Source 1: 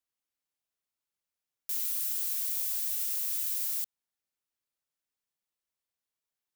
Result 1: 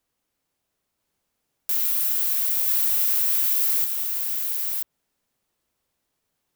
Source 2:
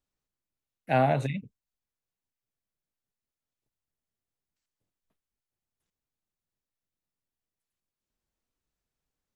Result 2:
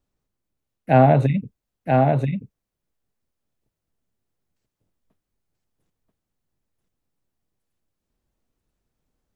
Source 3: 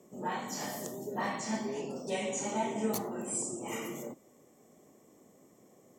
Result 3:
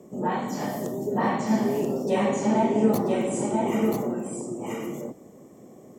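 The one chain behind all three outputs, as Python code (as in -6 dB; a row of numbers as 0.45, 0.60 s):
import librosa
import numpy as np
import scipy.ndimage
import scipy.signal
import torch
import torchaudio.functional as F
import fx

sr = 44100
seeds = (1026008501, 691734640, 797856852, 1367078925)

p1 = fx.tilt_shelf(x, sr, db=5.0, hz=970.0)
p2 = p1 + fx.echo_single(p1, sr, ms=984, db=-3.5, dry=0)
p3 = fx.dynamic_eq(p2, sr, hz=7100.0, q=0.73, threshold_db=-53.0, ratio=4.0, max_db=-6)
y = p3 * 10.0 ** (-26 / 20.0) / np.sqrt(np.mean(np.square(p3)))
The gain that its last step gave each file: +15.0, +7.0, +7.5 dB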